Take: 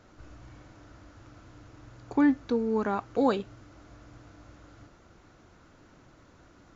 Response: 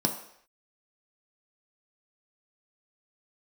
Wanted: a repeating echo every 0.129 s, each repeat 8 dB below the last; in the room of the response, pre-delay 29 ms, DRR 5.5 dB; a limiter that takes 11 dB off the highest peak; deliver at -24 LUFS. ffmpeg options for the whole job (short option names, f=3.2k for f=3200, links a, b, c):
-filter_complex "[0:a]alimiter=limit=-24dB:level=0:latency=1,aecho=1:1:129|258|387|516|645:0.398|0.159|0.0637|0.0255|0.0102,asplit=2[a][b];[1:a]atrim=start_sample=2205,adelay=29[c];[b][c]afir=irnorm=-1:irlink=0,volume=-14dB[d];[a][d]amix=inputs=2:normalize=0,volume=5.5dB"